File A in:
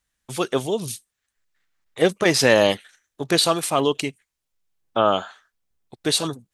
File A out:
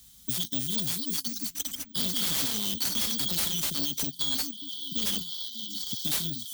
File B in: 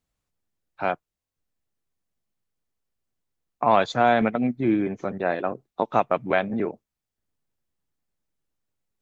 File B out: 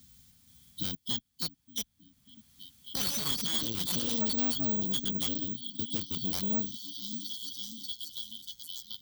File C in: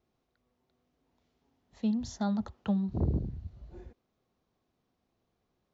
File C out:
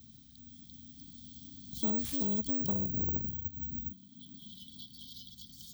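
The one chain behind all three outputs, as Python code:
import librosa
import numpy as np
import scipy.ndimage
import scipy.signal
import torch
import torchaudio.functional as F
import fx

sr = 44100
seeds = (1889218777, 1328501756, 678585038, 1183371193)

p1 = fx.tracing_dist(x, sr, depth_ms=0.36)
p2 = fx.small_body(p1, sr, hz=(450.0, 2500.0), ring_ms=55, db=18)
p3 = np.clip(p2, -10.0 ** (-12.5 / 20.0), 10.0 ** (-12.5 / 20.0))
p4 = p2 + F.gain(torch.from_numpy(p3), -5.0).numpy()
p5 = fx.echo_pitch(p4, sr, ms=476, semitones=5, count=3, db_per_echo=-3.0)
p6 = fx.brickwall_bandstop(p5, sr, low_hz=280.0, high_hz=3000.0)
p7 = p6 + fx.echo_stepped(p6, sr, ms=590, hz=520.0, octaves=0.7, feedback_pct=70, wet_db=-8.0, dry=0)
p8 = fx.tube_stage(p7, sr, drive_db=26.0, bias=0.45)
p9 = fx.dynamic_eq(p8, sr, hz=130.0, q=0.83, threshold_db=-44.0, ratio=4.0, max_db=-6)
p10 = scipy.signal.sosfilt(scipy.signal.butter(2, 42.0, 'highpass', fs=sr, output='sos'), p9)
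p11 = (np.kron(p10[::2], np.eye(2)[0]) * 2)[:len(p10)]
y = fx.band_squash(p11, sr, depth_pct=70)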